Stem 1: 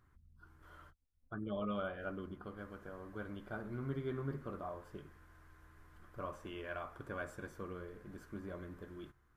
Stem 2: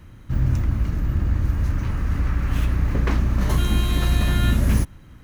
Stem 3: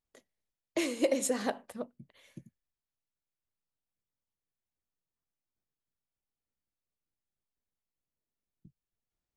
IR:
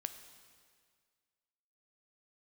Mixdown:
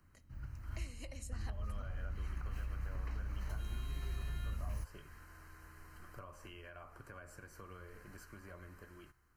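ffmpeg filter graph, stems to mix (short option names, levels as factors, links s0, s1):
-filter_complex "[0:a]highshelf=f=2700:g=7.5,dynaudnorm=f=490:g=7:m=2.24,alimiter=level_in=1.88:limit=0.0631:level=0:latency=1:release=227,volume=0.531,volume=0.75,asplit=2[s0][s1];[1:a]volume=0.178[s2];[2:a]equalizer=f=440:w=1.2:g=-11.5,dynaudnorm=f=420:g=11:m=3.76,volume=0.596[s3];[s1]apad=whole_len=230877[s4];[s2][s4]sidechaingate=range=0.316:threshold=0.00126:ratio=16:detection=peak[s5];[s0][s5][s3]amix=inputs=3:normalize=0,acrossover=split=96|660[s6][s7][s8];[s6]acompressor=threshold=0.0141:ratio=4[s9];[s7]acompressor=threshold=0.00112:ratio=4[s10];[s8]acompressor=threshold=0.002:ratio=4[s11];[s9][s10][s11]amix=inputs=3:normalize=0,asuperstop=centerf=3500:order=12:qfactor=5.6"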